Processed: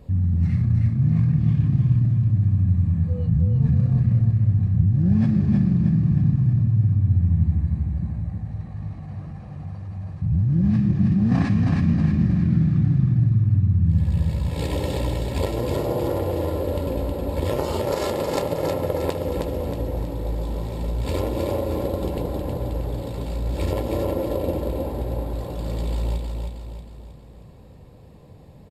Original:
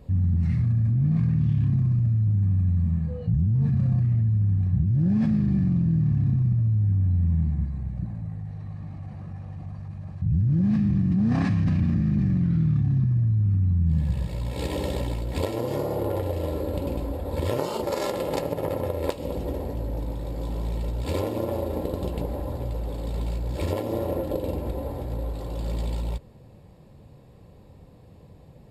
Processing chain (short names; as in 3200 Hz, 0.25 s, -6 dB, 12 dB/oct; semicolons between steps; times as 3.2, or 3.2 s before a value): feedback echo 0.316 s, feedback 47%, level -4 dB; gain +1.5 dB